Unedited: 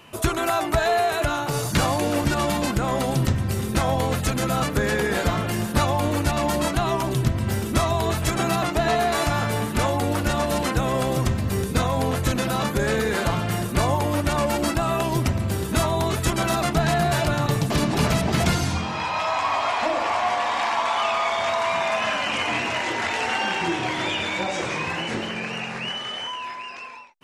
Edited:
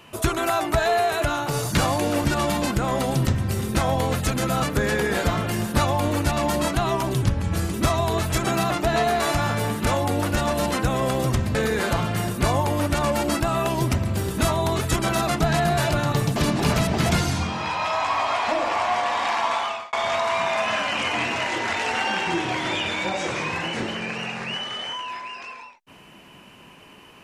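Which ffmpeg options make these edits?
-filter_complex "[0:a]asplit=5[s0][s1][s2][s3][s4];[s0]atrim=end=7.224[s5];[s1]atrim=start=7.22:end=7.66,asetpts=PTS-STARTPTS,asetrate=37485,aresample=44100,atrim=end_sample=22828,asetpts=PTS-STARTPTS[s6];[s2]atrim=start=7.656:end=11.472[s7];[s3]atrim=start=12.888:end=21.27,asetpts=PTS-STARTPTS,afade=t=out:st=7.982:d=0.4[s8];[s4]atrim=start=21.27,asetpts=PTS-STARTPTS,afade=t=in:d=0.004:c=hsin[s9];[s5][s6]acrossfade=d=0.004:c1=hsin:c2=hsin[s10];[s10][s7]acrossfade=d=0.004:c1=hsin:c2=hsin[s11];[s8][s9]concat=n=2:v=0:a=1[s12];[s11][s12]acrossfade=d=0.004:c1=hsin:c2=hsin"

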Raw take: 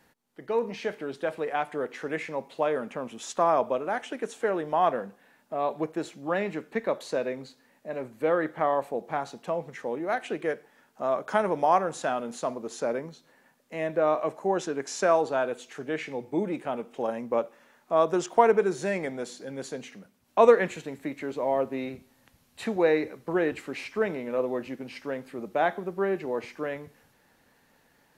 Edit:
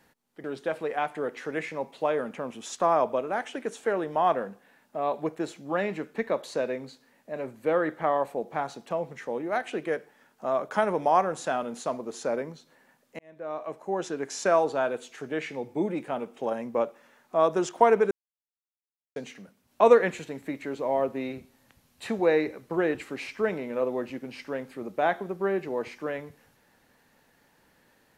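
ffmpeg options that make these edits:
-filter_complex "[0:a]asplit=5[s0][s1][s2][s3][s4];[s0]atrim=end=0.442[s5];[s1]atrim=start=1.008:end=13.76,asetpts=PTS-STARTPTS,afade=t=out:st=12.748:d=0.004:c=hsin[s6];[s2]atrim=start=13.76:end=18.68,asetpts=PTS-STARTPTS,afade=t=in:d=1.11,afade=t=out:st=4.916:d=0.004:c=hsin[s7];[s3]atrim=start=18.68:end=19.73,asetpts=PTS-STARTPTS,volume=0[s8];[s4]atrim=start=19.73,asetpts=PTS-STARTPTS,afade=t=in:d=0.004:c=hsin[s9];[s6][s7][s8][s9]concat=n=4:v=0:a=1[s10];[s5][s10]acrossfade=d=0.004:c1=hsin:c2=hsin"

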